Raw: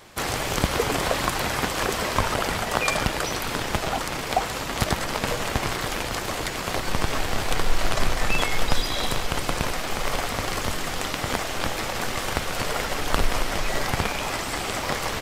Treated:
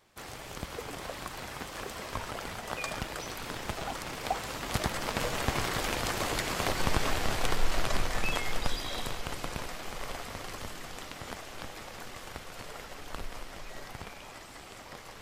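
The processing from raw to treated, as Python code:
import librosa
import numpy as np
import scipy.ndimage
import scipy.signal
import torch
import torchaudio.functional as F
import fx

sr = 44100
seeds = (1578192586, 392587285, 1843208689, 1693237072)

y = fx.doppler_pass(x, sr, speed_mps=5, closest_m=6.4, pass_at_s=6.43)
y = y * 10.0 ** (-3.0 / 20.0)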